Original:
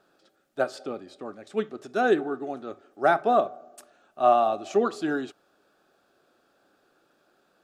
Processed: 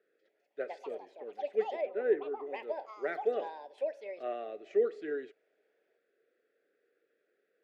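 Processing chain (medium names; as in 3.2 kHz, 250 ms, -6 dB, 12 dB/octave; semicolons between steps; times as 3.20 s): two resonant band-passes 950 Hz, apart 2.1 oct; ever faster or slower copies 253 ms, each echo +5 st, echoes 2, each echo -6 dB; 1.81–2.46 s: distance through air 380 m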